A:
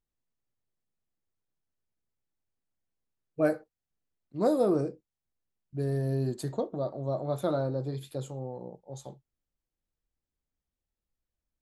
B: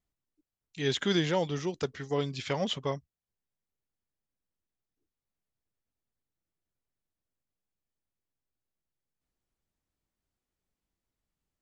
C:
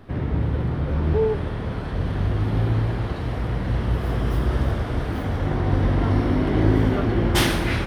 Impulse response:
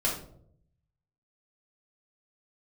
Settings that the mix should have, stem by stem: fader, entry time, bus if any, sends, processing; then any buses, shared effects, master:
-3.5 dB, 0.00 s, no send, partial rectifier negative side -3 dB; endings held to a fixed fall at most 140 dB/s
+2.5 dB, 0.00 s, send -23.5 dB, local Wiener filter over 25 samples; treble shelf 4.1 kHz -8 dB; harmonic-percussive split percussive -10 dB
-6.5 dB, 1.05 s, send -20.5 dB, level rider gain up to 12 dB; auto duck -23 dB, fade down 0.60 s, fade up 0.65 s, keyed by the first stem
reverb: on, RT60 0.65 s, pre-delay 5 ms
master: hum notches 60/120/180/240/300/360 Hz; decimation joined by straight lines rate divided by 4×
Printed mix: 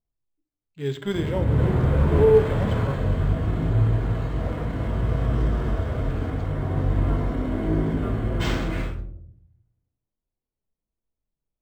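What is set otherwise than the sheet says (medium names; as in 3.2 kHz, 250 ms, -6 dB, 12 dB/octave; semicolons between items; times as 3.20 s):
stem A -3.5 dB -> -12.0 dB; reverb return +6.5 dB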